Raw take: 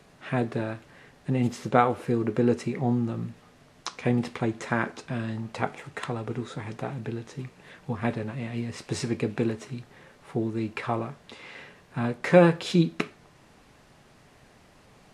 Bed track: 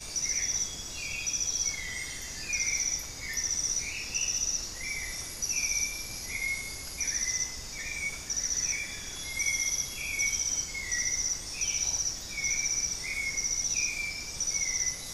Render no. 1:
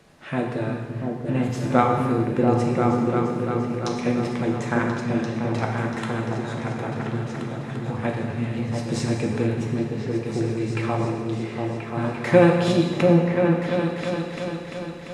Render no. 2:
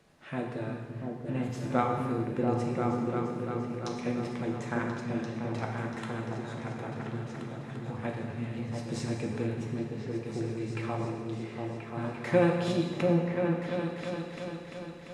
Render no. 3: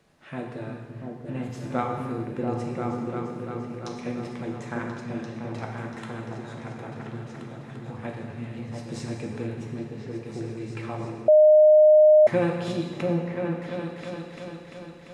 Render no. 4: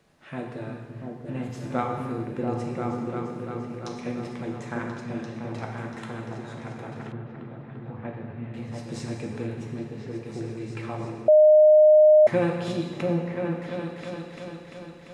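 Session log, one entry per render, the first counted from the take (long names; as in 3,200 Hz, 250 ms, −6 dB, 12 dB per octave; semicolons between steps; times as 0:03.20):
echo whose low-pass opens from repeat to repeat 344 ms, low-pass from 200 Hz, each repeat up 2 octaves, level 0 dB; reverb whose tail is shaped and stops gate 490 ms falling, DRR 1.5 dB
level −9 dB
0:11.28–0:12.27: beep over 613 Hz −11 dBFS
0:07.12–0:08.54: high-frequency loss of the air 430 metres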